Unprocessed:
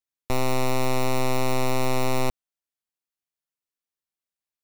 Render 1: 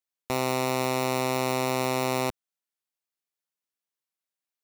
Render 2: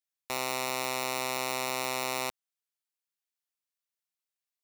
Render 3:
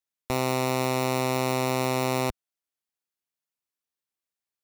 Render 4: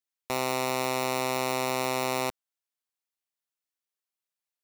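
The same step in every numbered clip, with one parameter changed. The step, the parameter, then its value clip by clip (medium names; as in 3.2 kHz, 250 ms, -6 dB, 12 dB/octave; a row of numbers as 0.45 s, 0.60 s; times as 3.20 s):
high-pass, cutoff frequency: 190 Hz, 1.4 kHz, 71 Hz, 500 Hz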